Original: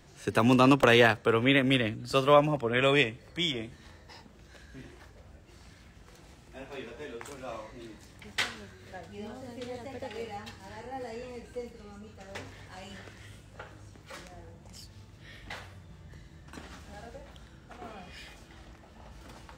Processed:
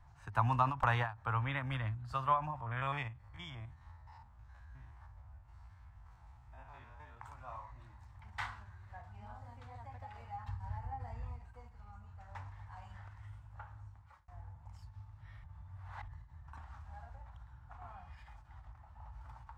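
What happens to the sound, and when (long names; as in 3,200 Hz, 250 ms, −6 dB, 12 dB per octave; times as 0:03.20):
0:02.56–0:07.17: spectrum averaged block by block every 50 ms
0:08.24–0:09.57: double-tracking delay 38 ms −6.5 dB
0:10.48–0:11.39: low-shelf EQ 240 Hz +11.5 dB
0:13.64–0:14.28: fade out equal-power
0:15.44–0:16.08: reverse
whole clip: drawn EQ curve 110 Hz 0 dB, 170 Hz −17 dB, 440 Hz −30 dB, 890 Hz 0 dB, 3,000 Hz −21 dB, 11,000 Hz −24 dB; every ending faded ahead of time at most 150 dB per second; level +1.5 dB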